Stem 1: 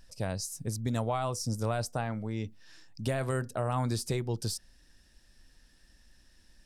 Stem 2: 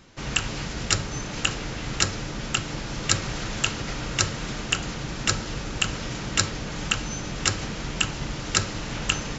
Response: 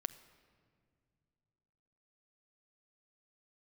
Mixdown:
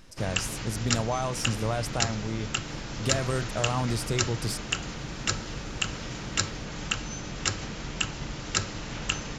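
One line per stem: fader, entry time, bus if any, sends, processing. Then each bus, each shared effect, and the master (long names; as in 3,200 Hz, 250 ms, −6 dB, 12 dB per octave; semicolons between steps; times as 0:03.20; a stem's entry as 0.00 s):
+2.0 dB, 0.00 s, no send, no processing
−4.5 dB, 0.00 s, no send, no processing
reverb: not used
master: no processing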